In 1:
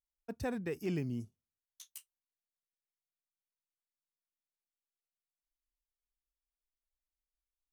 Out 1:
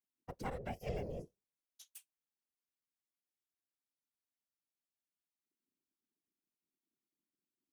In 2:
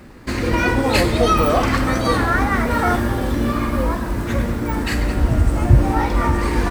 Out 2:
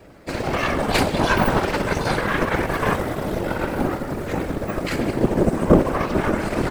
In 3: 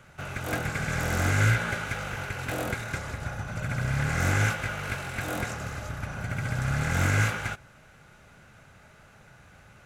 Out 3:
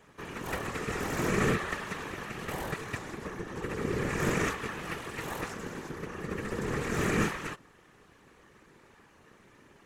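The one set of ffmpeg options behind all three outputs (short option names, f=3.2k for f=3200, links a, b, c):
-af "aeval=exprs='val(0)*sin(2*PI*280*n/s)':c=same,aeval=exprs='0.841*(cos(1*acos(clip(val(0)/0.841,-1,1)))-cos(1*PI/2))+0.266*(cos(4*acos(clip(val(0)/0.841,-1,1)))-cos(4*PI/2))':c=same,afftfilt=real='hypot(re,im)*cos(2*PI*random(0))':imag='hypot(re,im)*sin(2*PI*random(1))':win_size=512:overlap=0.75,volume=4dB"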